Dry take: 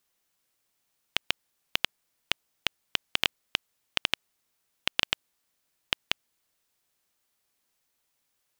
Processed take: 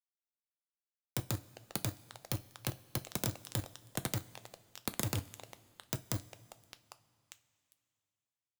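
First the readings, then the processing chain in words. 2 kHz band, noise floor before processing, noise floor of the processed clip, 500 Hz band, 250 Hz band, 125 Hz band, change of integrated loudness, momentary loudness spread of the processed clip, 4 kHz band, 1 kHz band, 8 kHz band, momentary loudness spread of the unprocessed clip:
-15.5 dB, -77 dBFS, under -85 dBFS, 0.0 dB, +6.0 dB, +13.5 dB, -8.0 dB, 19 LU, -16.5 dB, -6.0 dB, +3.0 dB, 5 LU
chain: comb filter that takes the minimum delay 0.54 ms; treble shelf 4.3 kHz +3 dB; sample-and-hold 16×; reverse; compression 16:1, threshold -38 dBFS, peak gain reduction 20 dB; reverse; frequency shift +91 Hz; on a send: repeats whose band climbs or falls 401 ms, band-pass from 730 Hz, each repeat 0.7 oct, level -11 dB; on the sum: fuzz box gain 56 dB, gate -52 dBFS; pre-emphasis filter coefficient 0.8; level held to a coarse grid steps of 17 dB; two-slope reverb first 0.24 s, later 2.7 s, from -18 dB, DRR 11 dB

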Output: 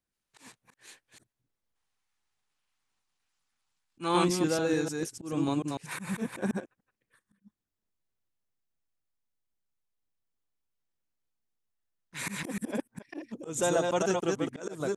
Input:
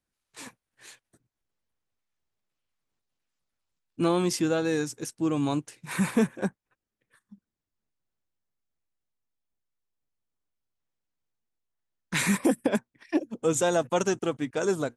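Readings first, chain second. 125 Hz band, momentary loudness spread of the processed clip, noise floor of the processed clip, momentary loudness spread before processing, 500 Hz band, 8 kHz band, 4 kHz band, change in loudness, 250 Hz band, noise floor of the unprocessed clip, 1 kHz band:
-4.0 dB, 12 LU, under -85 dBFS, 9 LU, -3.5 dB, -3.5 dB, -2.0 dB, -3.5 dB, -4.5 dB, under -85 dBFS, -1.0 dB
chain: chunks repeated in reverse 148 ms, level -3 dB; time-frequency box 1.76–4.24 s, 730–11000 Hz +8 dB; slow attack 174 ms; trim -3.5 dB

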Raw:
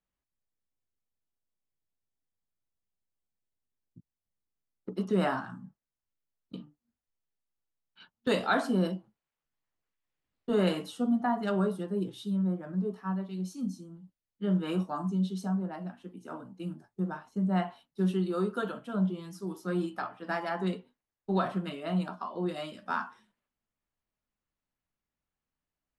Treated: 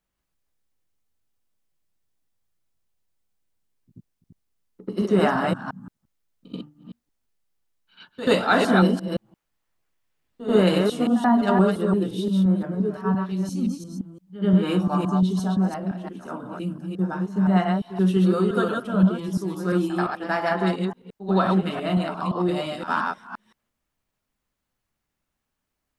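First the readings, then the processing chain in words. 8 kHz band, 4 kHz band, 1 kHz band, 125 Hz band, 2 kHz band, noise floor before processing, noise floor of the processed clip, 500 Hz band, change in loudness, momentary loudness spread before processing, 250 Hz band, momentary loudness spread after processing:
no reading, +9.5 dB, +9.5 dB, +9.5 dB, +9.5 dB, under -85 dBFS, -81 dBFS, +9.5 dB, +9.5 dB, 15 LU, +9.5 dB, 15 LU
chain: chunks repeated in reverse 173 ms, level -3 dB; pre-echo 85 ms -14.5 dB; trim +7.5 dB

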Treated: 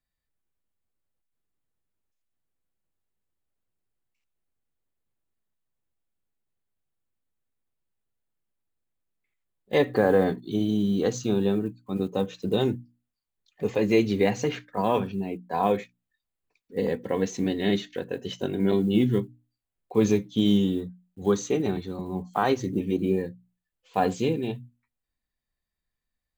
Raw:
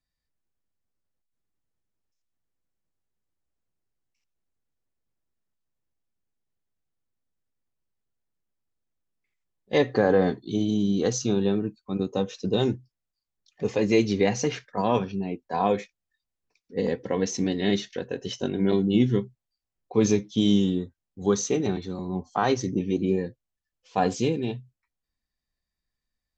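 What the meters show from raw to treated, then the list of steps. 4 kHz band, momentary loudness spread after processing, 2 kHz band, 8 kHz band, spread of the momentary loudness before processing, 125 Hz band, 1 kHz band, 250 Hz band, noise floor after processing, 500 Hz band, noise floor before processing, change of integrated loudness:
-2.0 dB, 10 LU, -0.5 dB, no reading, 10 LU, -1.0 dB, 0.0 dB, -0.5 dB, -85 dBFS, 0.0 dB, under -85 dBFS, -0.5 dB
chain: block-companded coder 7-bit; peaking EQ 5.5 kHz -11 dB 0.46 oct; hum notches 60/120/180/240/300 Hz

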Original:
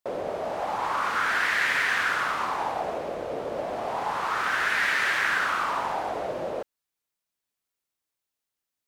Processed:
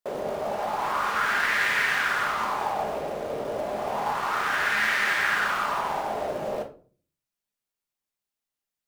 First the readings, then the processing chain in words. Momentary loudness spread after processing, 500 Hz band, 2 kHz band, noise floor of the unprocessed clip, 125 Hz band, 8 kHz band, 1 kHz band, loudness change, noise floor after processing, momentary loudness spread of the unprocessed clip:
9 LU, +1.0 dB, +0.5 dB, under -85 dBFS, +2.0 dB, +1.0 dB, +0.5 dB, +0.5 dB, under -85 dBFS, 10 LU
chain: in parallel at -7 dB: companded quantiser 4-bit; on the sum: simulated room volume 300 m³, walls furnished, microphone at 1.3 m; trim -4.5 dB

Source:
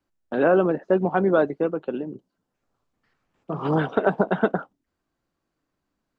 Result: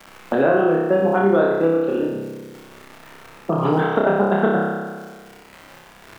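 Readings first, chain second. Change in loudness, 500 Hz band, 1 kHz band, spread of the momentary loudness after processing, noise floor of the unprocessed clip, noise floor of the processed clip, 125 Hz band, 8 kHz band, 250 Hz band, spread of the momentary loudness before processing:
+4.0 dB, +4.5 dB, +5.5 dB, 16 LU, -80 dBFS, -46 dBFS, +4.0 dB, no reading, +4.5 dB, 12 LU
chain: crackle 190 per s -44 dBFS; flutter echo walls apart 5.2 m, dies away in 0.99 s; three bands compressed up and down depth 70%

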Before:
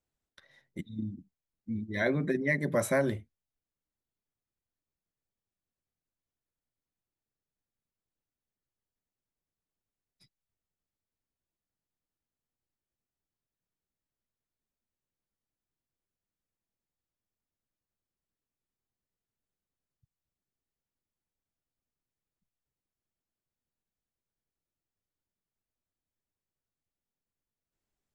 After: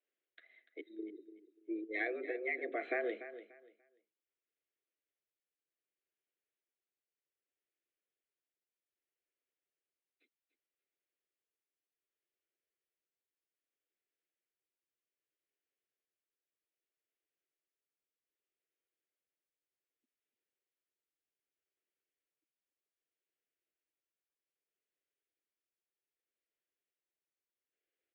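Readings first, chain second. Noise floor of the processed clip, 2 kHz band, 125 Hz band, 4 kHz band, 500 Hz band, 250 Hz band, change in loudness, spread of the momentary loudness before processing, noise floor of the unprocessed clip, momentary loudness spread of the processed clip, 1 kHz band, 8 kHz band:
under -85 dBFS, -5.5 dB, under -40 dB, -11.5 dB, -8.0 dB, -11.5 dB, -8.5 dB, 18 LU, under -85 dBFS, 17 LU, -6.0 dB, under -25 dB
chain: band-stop 720 Hz, Q 12; compression, threshold -29 dBFS, peak gain reduction 7 dB; tremolo 0.64 Hz, depth 44%; mistuned SSB +110 Hz 240–3500 Hz; static phaser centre 2.3 kHz, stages 4; on a send: feedback delay 292 ms, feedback 23%, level -13 dB; on the sum: trim +2.5 dB

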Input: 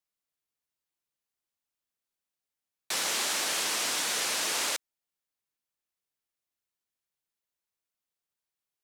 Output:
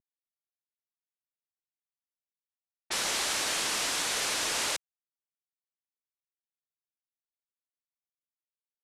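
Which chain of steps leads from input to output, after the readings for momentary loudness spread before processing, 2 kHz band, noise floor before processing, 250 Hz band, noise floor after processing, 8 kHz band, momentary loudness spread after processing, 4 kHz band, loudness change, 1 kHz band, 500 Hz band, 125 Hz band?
4 LU, 0.0 dB, under -85 dBFS, +1.0 dB, under -85 dBFS, -1.0 dB, 4 LU, -0.5 dB, -0.5 dB, 0.0 dB, +0.5 dB, +4.5 dB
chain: CVSD coder 64 kbps; level-controlled noise filter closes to 650 Hz, open at -32 dBFS

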